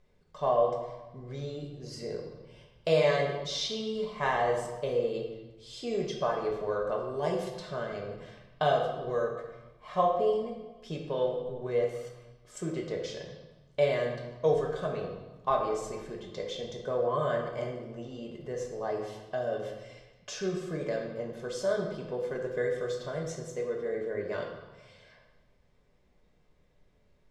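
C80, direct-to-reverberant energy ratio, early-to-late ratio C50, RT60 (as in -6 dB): 6.0 dB, -1.0 dB, 4.0 dB, 1.1 s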